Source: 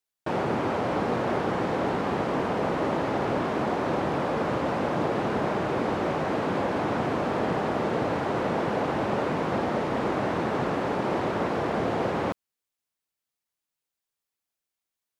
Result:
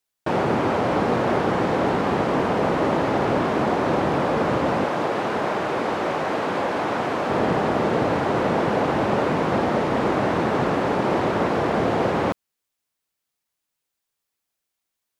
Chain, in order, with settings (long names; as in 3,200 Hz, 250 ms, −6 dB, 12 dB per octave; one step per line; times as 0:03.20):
0:04.84–0:07.30: low-shelf EQ 280 Hz −10.5 dB
level +5.5 dB